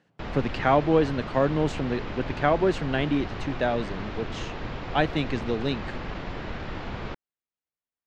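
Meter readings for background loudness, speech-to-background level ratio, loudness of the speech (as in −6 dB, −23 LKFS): −36.0 LKFS, 9.5 dB, −26.5 LKFS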